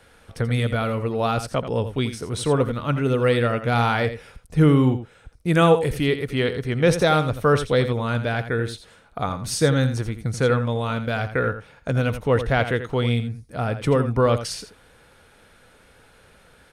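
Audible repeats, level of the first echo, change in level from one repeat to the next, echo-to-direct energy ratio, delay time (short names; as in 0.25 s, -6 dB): 1, -11.0 dB, no steady repeat, -11.0 dB, 84 ms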